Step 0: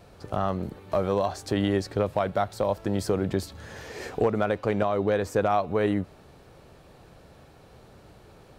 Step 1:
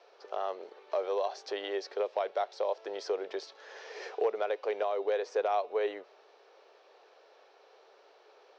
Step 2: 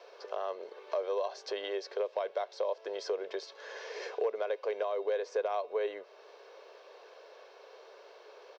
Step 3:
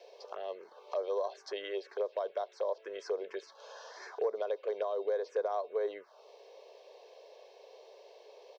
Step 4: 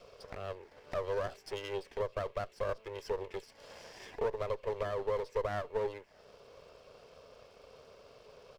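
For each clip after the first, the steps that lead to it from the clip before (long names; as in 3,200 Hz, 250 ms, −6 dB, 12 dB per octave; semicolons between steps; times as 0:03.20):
Chebyshev band-pass filter 410–5,800 Hz, order 4; dynamic equaliser 1,300 Hz, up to −5 dB, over −41 dBFS, Q 1.6; level −4 dB
comb filter 1.9 ms, depth 42%; downward compressor 1.5 to 1, threshold −50 dBFS, peak gain reduction 10 dB; level +5 dB
phaser swept by the level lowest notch 190 Hz, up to 2,800 Hz, full sweep at −28.5 dBFS
lower of the sound and its delayed copy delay 0.39 ms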